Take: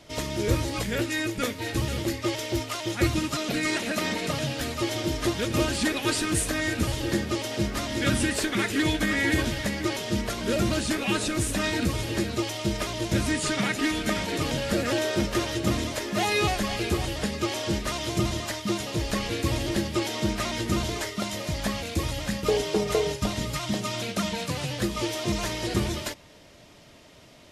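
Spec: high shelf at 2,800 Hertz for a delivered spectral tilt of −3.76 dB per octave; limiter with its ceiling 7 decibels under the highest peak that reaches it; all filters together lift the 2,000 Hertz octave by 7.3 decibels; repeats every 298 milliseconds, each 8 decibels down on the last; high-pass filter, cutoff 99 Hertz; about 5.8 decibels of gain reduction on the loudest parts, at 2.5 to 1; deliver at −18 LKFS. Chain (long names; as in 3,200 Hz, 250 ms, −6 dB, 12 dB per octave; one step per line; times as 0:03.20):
high-pass filter 99 Hz
parametric band 2,000 Hz +6 dB
high-shelf EQ 2,800 Hz +6.5 dB
downward compressor 2.5 to 1, threshold −25 dBFS
brickwall limiter −19 dBFS
repeating echo 298 ms, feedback 40%, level −8 dB
level +9.5 dB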